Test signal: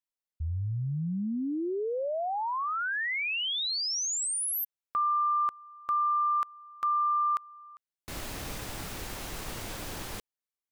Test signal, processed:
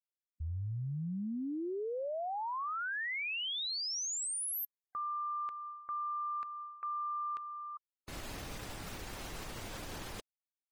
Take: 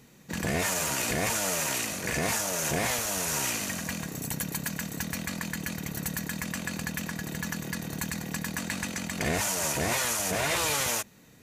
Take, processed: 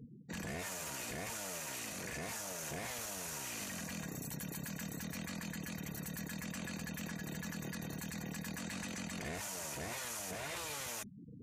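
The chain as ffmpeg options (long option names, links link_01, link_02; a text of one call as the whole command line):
ffmpeg -i in.wav -af "afftfilt=real='re*gte(hypot(re,im),0.00562)':imag='im*gte(hypot(re,im),0.00562)':win_size=1024:overlap=0.75,alimiter=level_in=3.5dB:limit=-24dB:level=0:latency=1:release=16,volume=-3.5dB,areverse,acompressor=threshold=-42dB:ratio=8:attack=0.1:release=406:knee=1:detection=peak,areverse,volume=6dB" out.wav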